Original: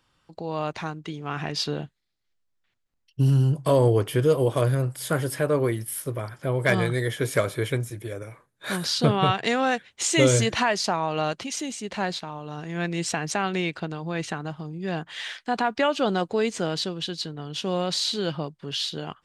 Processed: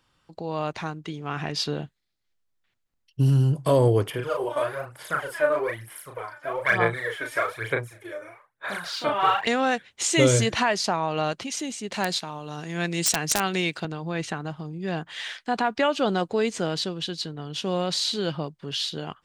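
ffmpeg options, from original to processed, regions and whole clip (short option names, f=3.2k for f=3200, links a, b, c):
-filter_complex "[0:a]asettb=1/sr,asplit=3[a][b][c];[a]atrim=end=4.104[d];[b]atrim=start=4.1:end=9.47,asetpts=PTS-STARTPTS,afade=t=in:d=0.004:c=qsin,afade=t=out:st=5.366:d=0.004:c=qsin,acrossover=split=590 2500:gain=0.112 1 0.2[e][f][g];[e][f][g]amix=inputs=3:normalize=0,aphaser=in_gain=1:out_gain=1:delay=3.4:decay=0.72:speed=1.1:type=sinusoidal,asplit=2[h][i];[i]adelay=35,volume=-4dB[j];[h][j]amix=inputs=2:normalize=0,atrim=end_sample=236817[k];[c]atrim=start=9.466[l];[d][k]acrossfade=d=0.004:c1=hsin:c2=qsin[m];[m][l]acrossfade=d=0.004:c1=qsin:c2=hsin,asettb=1/sr,asplit=3[n][o][p];[n]atrim=end=11.924[q];[o]atrim=start=11.92:end=13.85,asetpts=PTS-STARTPTS,afade=t=in:d=0.004:c=qsin,afade=t=out:st=1.926:d=0.004:c=qsin,highpass=100,highshelf=f=4.3k:g=11.5,aeval=exprs='(mod(3.55*val(0)+1,2)-1)/3.55':c=same[r];[p]atrim=start=13.846[s];[q][r]acrossfade=d=0.004:c1=hsin:c2=qsin[t];[t][s]acrossfade=d=0.004:c1=qsin:c2=hsin"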